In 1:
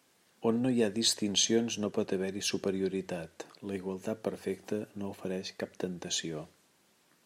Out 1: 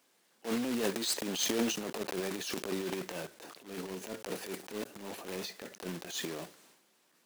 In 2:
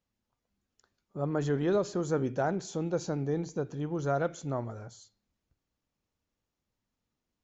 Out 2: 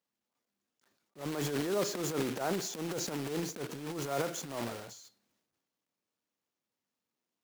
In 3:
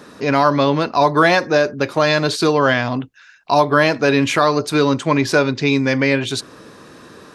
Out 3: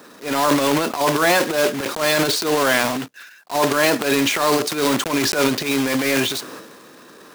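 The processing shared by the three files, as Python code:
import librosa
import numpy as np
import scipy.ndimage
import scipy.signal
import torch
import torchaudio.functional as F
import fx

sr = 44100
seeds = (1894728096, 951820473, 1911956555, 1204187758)

y = fx.block_float(x, sr, bits=3)
y = scipy.signal.sosfilt(scipy.signal.butter(2, 220.0, 'highpass', fs=sr, output='sos'), y)
y = fx.transient(y, sr, attack_db=-12, sustain_db=9)
y = y * librosa.db_to_amplitude(-2.5)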